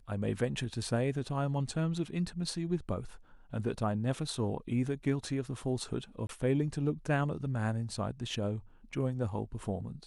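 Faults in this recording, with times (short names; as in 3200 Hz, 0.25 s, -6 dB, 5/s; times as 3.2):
6.27–6.29 gap 22 ms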